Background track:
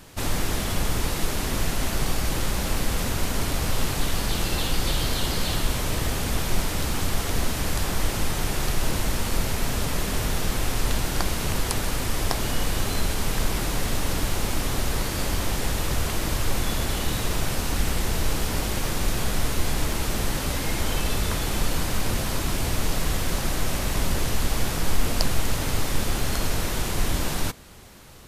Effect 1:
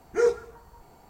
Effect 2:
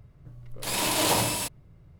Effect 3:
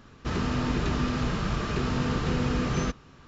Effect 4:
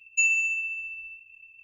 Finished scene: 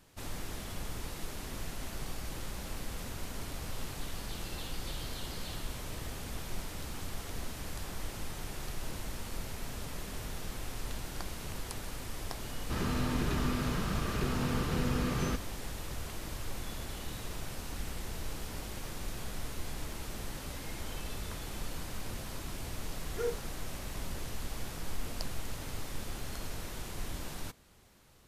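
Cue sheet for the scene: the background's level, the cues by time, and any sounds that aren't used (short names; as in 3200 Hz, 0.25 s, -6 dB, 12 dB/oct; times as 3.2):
background track -15 dB
12.45 add 3 -5.5 dB
23.01 add 1 -13 dB
not used: 2, 4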